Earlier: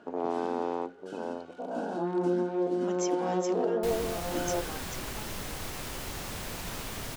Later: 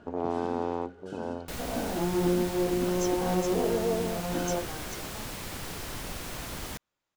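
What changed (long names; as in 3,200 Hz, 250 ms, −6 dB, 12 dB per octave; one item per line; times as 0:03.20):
first sound: remove high-pass filter 240 Hz 12 dB per octave
second sound: entry −2.35 s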